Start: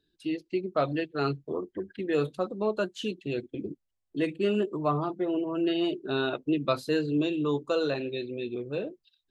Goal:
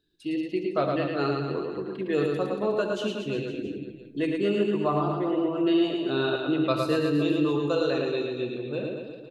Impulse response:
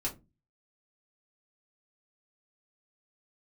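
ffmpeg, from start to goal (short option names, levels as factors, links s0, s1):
-filter_complex "[0:a]aecho=1:1:110|231|364.1|510.5|671.6:0.631|0.398|0.251|0.158|0.1,asplit=2[s0][s1];[1:a]atrim=start_sample=2205,adelay=59[s2];[s1][s2]afir=irnorm=-1:irlink=0,volume=0.211[s3];[s0][s3]amix=inputs=2:normalize=0"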